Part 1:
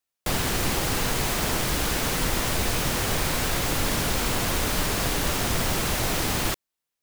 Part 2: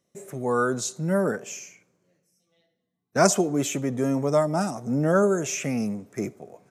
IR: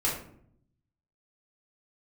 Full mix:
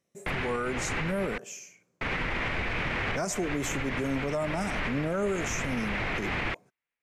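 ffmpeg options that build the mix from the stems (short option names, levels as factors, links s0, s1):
-filter_complex "[0:a]lowpass=f=2200:t=q:w=3,volume=0.668,asplit=3[s0][s1][s2];[s0]atrim=end=1.38,asetpts=PTS-STARTPTS,afade=t=out:st=1.376:d=0.004:c=hsin[s3];[s1]atrim=start=1.38:end=2.01,asetpts=PTS-STARTPTS,volume=0[s4];[s2]atrim=start=2.01,asetpts=PTS-STARTPTS,afade=t=in:d=0.004:c=hsin[s5];[s3][s4][s5]concat=n=3:v=0:a=1[s6];[1:a]volume=0.562,asplit=2[s7][s8];[s8]apad=whole_len=309823[s9];[s6][s9]sidechaincompress=threshold=0.0224:ratio=8:attack=5.4:release=174[s10];[s10][s7]amix=inputs=2:normalize=0,alimiter=limit=0.0841:level=0:latency=1:release=34"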